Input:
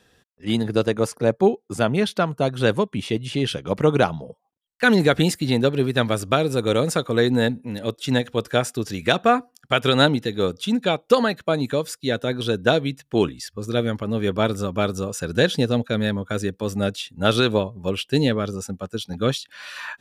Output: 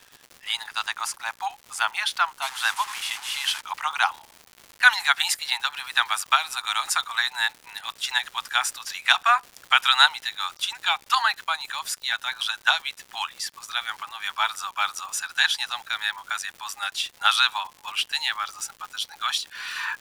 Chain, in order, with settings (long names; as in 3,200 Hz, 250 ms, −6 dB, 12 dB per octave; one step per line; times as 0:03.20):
0:02.42–0:03.61: linear delta modulator 64 kbit/s, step −29 dBFS
Butterworth high-pass 820 Hz 72 dB per octave
surface crackle 260 per second −38 dBFS
level +4 dB